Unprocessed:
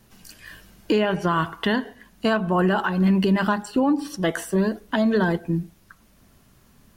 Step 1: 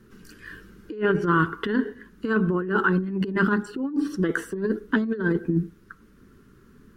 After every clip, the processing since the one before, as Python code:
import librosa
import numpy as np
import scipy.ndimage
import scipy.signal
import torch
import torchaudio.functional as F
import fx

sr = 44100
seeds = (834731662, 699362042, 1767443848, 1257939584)

y = fx.curve_eq(x, sr, hz=(120.0, 430.0, 680.0, 1400.0, 2300.0, 12000.0), db=(0, 9, -17, 6, -6, -11))
y = fx.over_compress(y, sr, threshold_db=-19.0, ratio=-0.5)
y = y * librosa.db_to_amplitude(-3.0)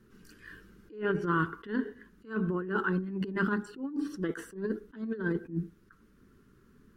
y = fx.attack_slew(x, sr, db_per_s=190.0)
y = y * librosa.db_to_amplitude(-7.5)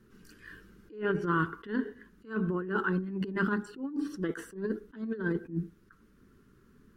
y = x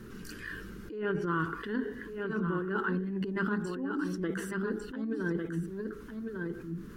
y = x + 10.0 ** (-8.5 / 20.0) * np.pad(x, (int(1150 * sr / 1000.0), 0))[:len(x)]
y = fx.env_flatten(y, sr, amount_pct=50)
y = y * librosa.db_to_amplitude(-3.5)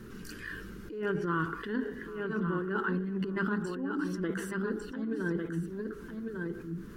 y = fx.echo_feedback(x, sr, ms=781, feedback_pct=37, wet_db=-19.0)